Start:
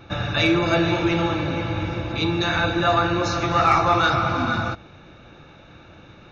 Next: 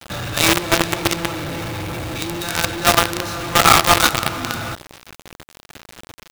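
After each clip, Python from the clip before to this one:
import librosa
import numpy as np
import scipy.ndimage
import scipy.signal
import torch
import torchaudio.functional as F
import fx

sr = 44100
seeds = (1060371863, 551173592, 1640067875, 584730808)

y = fx.quant_companded(x, sr, bits=2)
y = y * librosa.db_to_amplitude(-1.0)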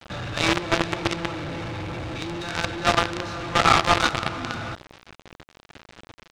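y = fx.air_absorb(x, sr, metres=110.0)
y = y * librosa.db_to_amplitude(-4.5)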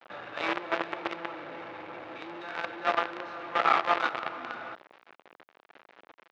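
y = fx.bandpass_edges(x, sr, low_hz=440.0, high_hz=2200.0)
y = y * librosa.db_to_amplitude(-5.0)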